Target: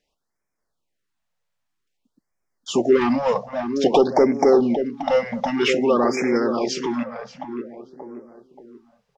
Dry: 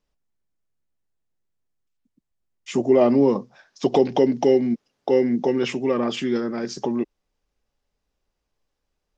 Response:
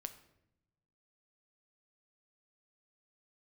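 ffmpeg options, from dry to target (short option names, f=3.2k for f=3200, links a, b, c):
-filter_complex "[0:a]asplit=2[a][b];[b]highpass=f=720:p=1,volume=15dB,asoftclip=type=tanh:threshold=-5.5dB[c];[a][c]amix=inputs=2:normalize=0,lowpass=f=4.6k:p=1,volume=-6dB,asplit=2[d][e];[e]adelay=580,lowpass=f=1.4k:p=1,volume=-7.5dB,asplit=2[f][g];[g]adelay=580,lowpass=f=1.4k:p=1,volume=0.43,asplit=2[h][i];[i]adelay=580,lowpass=f=1.4k:p=1,volume=0.43,asplit=2[j][k];[k]adelay=580,lowpass=f=1.4k:p=1,volume=0.43,asplit=2[l][m];[m]adelay=580,lowpass=f=1.4k:p=1,volume=0.43[n];[d][f][h][j][l][n]amix=inputs=6:normalize=0,afftfilt=real='re*(1-between(b*sr/1024,300*pow(3600/300,0.5+0.5*sin(2*PI*0.52*pts/sr))/1.41,300*pow(3600/300,0.5+0.5*sin(2*PI*0.52*pts/sr))*1.41))':imag='im*(1-between(b*sr/1024,300*pow(3600/300,0.5+0.5*sin(2*PI*0.52*pts/sr))/1.41,300*pow(3600/300,0.5+0.5*sin(2*PI*0.52*pts/sr))*1.41))':win_size=1024:overlap=0.75"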